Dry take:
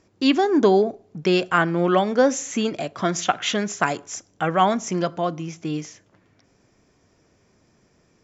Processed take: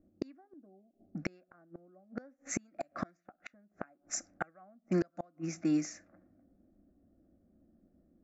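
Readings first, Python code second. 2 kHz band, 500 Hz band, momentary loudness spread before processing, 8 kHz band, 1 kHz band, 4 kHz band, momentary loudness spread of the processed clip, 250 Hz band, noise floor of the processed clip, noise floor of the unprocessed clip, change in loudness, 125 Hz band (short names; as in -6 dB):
-20.5 dB, -22.5 dB, 12 LU, n/a, -25.5 dB, -25.0 dB, 22 LU, -14.5 dB, -76 dBFS, -62 dBFS, -16.5 dB, -14.5 dB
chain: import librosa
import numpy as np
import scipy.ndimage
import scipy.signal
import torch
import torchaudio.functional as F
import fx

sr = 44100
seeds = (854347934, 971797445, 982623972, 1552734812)

y = fx.fixed_phaser(x, sr, hz=640.0, stages=8)
y = fx.gate_flip(y, sr, shuts_db=-20.0, range_db=-36)
y = fx.env_lowpass(y, sr, base_hz=330.0, full_db=-33.5)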